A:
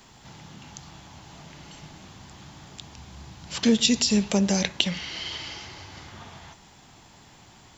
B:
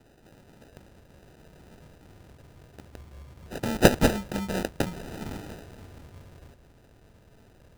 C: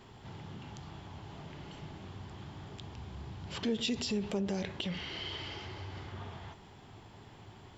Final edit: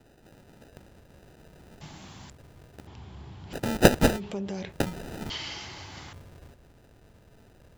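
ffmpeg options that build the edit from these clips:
-filter_complex "[0:a]asplit=2[s0][s1];[2:a]asplit=2[s2][s3];[1:a]asplit=5[s4][s5][s6][s7][s8];[s4]atrim=end=1.812[s9];[s0]atrim=start=1.808:end=2.302[s10];[s5]atrim=start=2.298:end=2.872[s11];[s2]atrim=start=2.868:end=3.532[s12];[s6]atrim=start=3.528:end=4.21[s13];[s3]atrim=start=4.15:end=4.74[s14];[s7]atrim=start=4.68:end=5.302[s15];[s1]atrim=start=5.298:end=6.132[s16];[s8]atrim=start=6.128[s17];[s9][s10]acrossfade=d=0.004:c1=hsin:c2=hsin[s18];[s18][s11]acrossfade=d=0.004:c1=hsin:c2=hsin[s19];[s19][s12]acrossfade=d=0.004:c1=hsin:c2=hsin[s20];[s20][s13]acrossfade=d=0.004:c1=hsin:c2=hsin[s21];[s21][s14]acrossfade=d=0.06:c1=tri:c2=tri[s22];[s22][s15]acrossfade=d=0.06:c1=tri:c2=tri[s23];[s23][s16]acrossfade=d=0.004:c1=hsin:c2=hsin[s24];[s24][s17]acrossfade=d=0.004:c1=hsin:c2=hsin"

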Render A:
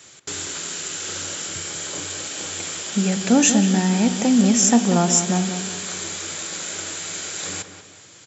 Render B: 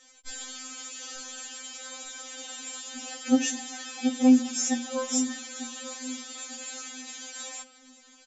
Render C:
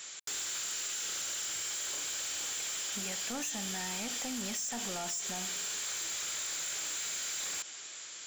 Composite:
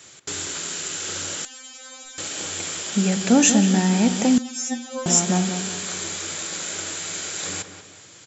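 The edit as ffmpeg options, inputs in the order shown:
-filter_complex "[1:a]asplit=2[s0][s1];[0:a]asplit=3[s2][s3][s4];[s2]atrim=end=1.452[s5];[s0]atrim=start=1.448:end=2.182[s6];[s3]atrim=start=2.178:end=4.382[s7];[s1]atrim=start=4.378:end=5.062[s8];[s4]atrim=start=5.058[s9];[s5][s6]acrossfade=d=0.004:c1=hsin:c2=hsin[s10];[s10][s7]acrossfade=d=0.004:c1=hsin:c2=hsin[s11];[s11][s8]acrossfade=d=0.004:c1=hsin:c2=hsin[s12];[s12][s9]acrossfade=d=0.004:c1=hsin:c2=hsin"

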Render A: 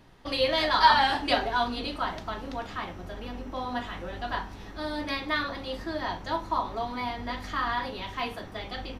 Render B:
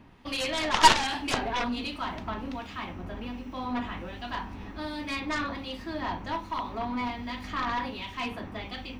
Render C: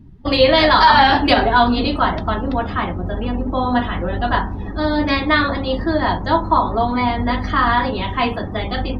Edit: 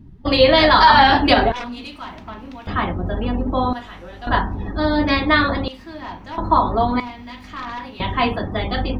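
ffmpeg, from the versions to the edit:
-filter_complex "[1:a]asplit=3[s0][s1][s2];[2:a]asplit=5[s3][s4][s5][s6][s7];[s3]atrim=end=1.522[s8];[s0]atrim=start=1.518:end=2.672[s9];[s4]atrim=start=2.668:end=3.732[s10];[0:a]atrim=start=3.728:end=4.272[s11];[s5]atrim=start=4.268:end=5.682[s12];[s1]atrim=start=5.678:end=6.382[s13];[s6]atrim=start=6.378:end=7.002[s14];[s2]atrim=start=6.998:end=8.002[s15];[s7]atrim=start=7.998[s16];[s8][s9]acrossfade=d=0.004:c1=hsin:c2=hsin[s17];[s17][s10]acrossfade=d=0.004:c1=hsin:c2=hsin[s18];[s18][s11]acrossfade=d=0.004:c1=hsin:c2=hsin[s19];[s19][s12]acrossfade=d=0.004:c1=hsin:c2=hsin[s20];[s20][s13]acrossfade=d=0.004:c1=hsin:c2=hsin[s21];[s21][s14]acrossfade=d=0.004:c1=hsin:c2=hsin[s22];[s22][s15]acrossfade=d=0.004:c1=hsin:c2=hsin[s23];[s23][s16]acrossfade=d=0.004:c1=hsin:c2=hsin"

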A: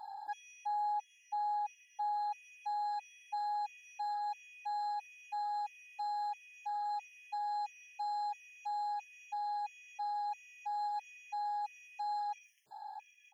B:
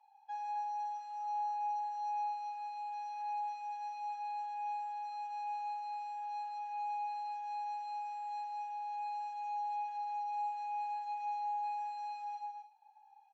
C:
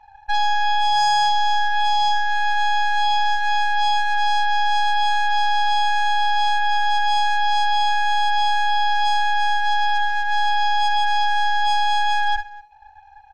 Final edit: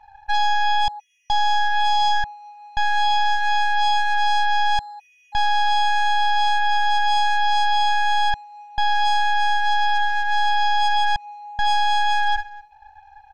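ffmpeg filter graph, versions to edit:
-filter_complex "[0:a]asplit=2[s0][s1];[1:a]asplit=3[s2][s3][s4];[2:a]asplit=6[s5][s6][s7][s8][s9][s10];[s5]atrim=end=0.882[s11];[s0]atrim=start=0.878:end=1.302[s12];[s6]atrim=start=1.298:end=2.242[s13];[s2]atrim=start=2.238:end=2.772[s14];[s7]atrim=start=2.768:end=4.792[s15];[s1]atrim=start=4.788:end=5.352[s16];[s8]atrim=start=5.348:end=8.342[s17];[s3]atrim=start=8.338:end=8.782[s18];[s9]atrim=start=8.778:end=11.162[s19];[s4]atrim=start=11.158:end=11.592[s20];[s10]atrim=start=11.588[s21];[s11][s12]acrossfade=d=0.004:c1=hsin:c2=hsin[s22];[s22][s13]acrossfade=d=0.004:c1=hsin:c2=hsin[s23];[s23][s14]acrossfade=d=0.004:c1=hsin:c2=hsin[s24];[s24][s15]acrossfade=d=0.004:c1=hsin:c2=hsin[s25];[s25][s16]acrossfade=d=0.004:c1=hsin:c2=hsin[s26];[s26][s17]acrossfade=d=0.004:c1=hsin:c2=hsin[s27];[s27][s18]acrossfade=d=0.004:c1=hsin:c2=hsin[s28];[s28][s19]acrossfade=d=0.004:c1=hsin:c2=hsin[s29];[s29][s20]acrossfade=d=0.004:c1=hsin:c2=hsin[s30];[s30][s21]acrossfade=d=0.004:c1=hsin:c2=hsin"

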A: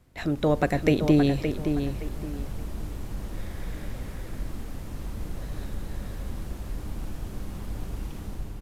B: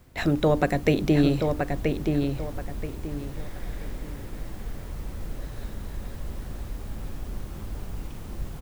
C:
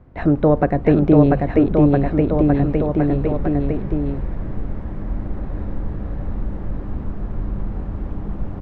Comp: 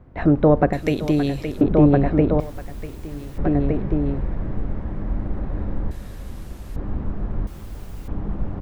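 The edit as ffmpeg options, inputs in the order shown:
-filter_complex "[0:a]asplit=2[s0][s1];[1:a]asplit=2[s2][s3];[2:a]asplit=5[s4][s5][s6][s7][s8];[s4]atrim=end=0.732[s9];[s0]atrim=start=0.728:end=1.612[s10];[s5]atrim=start=1.608:end=2.402[s11];[s2]atrim=start=2.398:end=3.382[s12];[s6]atrim=start=3.378:end=5.912[s13];[s1]atrim=start=5.908:end=6.762[s14];[s7]atrim=start=6.758:end=7.472[s15];[s3]atrim=start=7.468:end=8.082[s16];[s8]atrim=start=8.078[s17];[s9][s10]acrossfade=d=0.004:c1=hsin:c2=hsin[s18];[s18][s11]acrossfade=d=0.004:c1=hsin:c2=hsin[s19];[s19][s12]acrossfade=d=0.004:c1=hsin:c2=hsin[s20];[s20][s13]acrossfade=d=0.004:c1=hsin:c2=hsin[s21];[s21][s14]acrossfade=d=0.004:c1=hsin:c2=hsin[s22];[s22][s15]acrossfade=d=0.004:c1=hsin:c2=hsin[s23];[s23][s16]acrossfade=d=0.004:c1=hsin:c2=hsin[s24];[s24][s17]acrossfade=d=0.004:c1=hsin:c2=hsin"

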